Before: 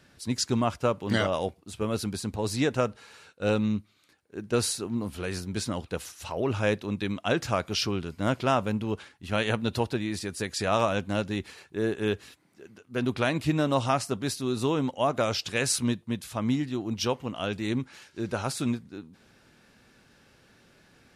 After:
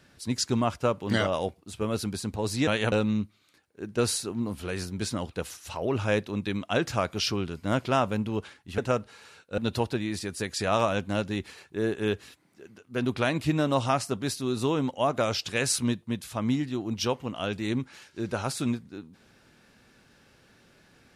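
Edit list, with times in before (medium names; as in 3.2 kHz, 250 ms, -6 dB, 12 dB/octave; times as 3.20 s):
2.67–3.47 s: swap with 9.33–9.58 s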